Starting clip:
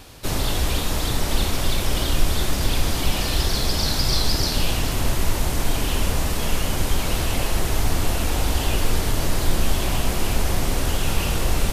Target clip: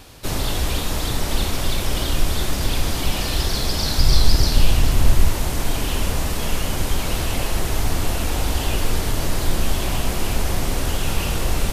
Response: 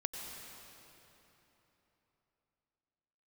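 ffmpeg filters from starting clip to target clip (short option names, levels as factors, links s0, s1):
-filter_complex "[0:a]asettb=1/sr,asplit=3[s0][s1][s2];[s0]atrim=end=3.984[s3];[s1]atrim=start=3.98:end=5.28,asetpts=PTS-STARTPTS,afade=t=in:d=0.004:c=qsin,afade=t=out:st=1.296:d=0.004:c=qsin,lowshelf=f=110:g=9.5[s4];[s2]atrim=start=5.276[s5];[s3][s4]acrossfade=d=0.004:c1=hsin:c2=qsin[s6];[s6][s5]acrossfade=d=0.004:c1=qsin:c2=hsin"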